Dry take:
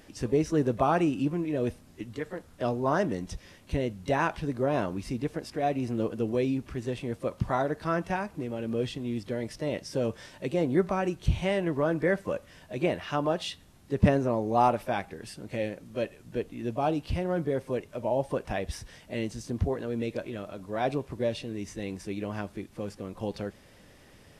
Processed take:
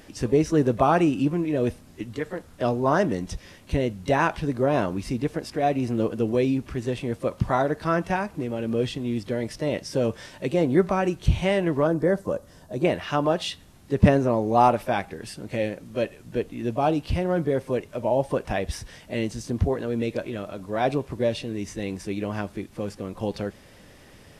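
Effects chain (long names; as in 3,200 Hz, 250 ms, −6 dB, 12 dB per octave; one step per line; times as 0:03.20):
0:11.87–0:12.85: parametric band 2,400 Hz −14 dB 1.2 octaves
level +5 dB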